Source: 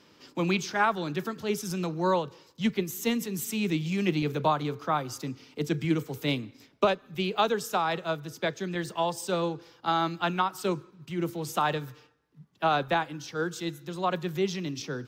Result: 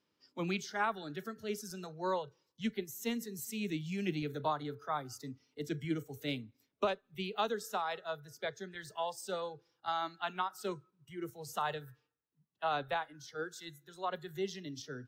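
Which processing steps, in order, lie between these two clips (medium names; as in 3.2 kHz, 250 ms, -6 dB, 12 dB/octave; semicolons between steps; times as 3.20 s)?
spectral noise reduction 14 dB; trim -8.5 dB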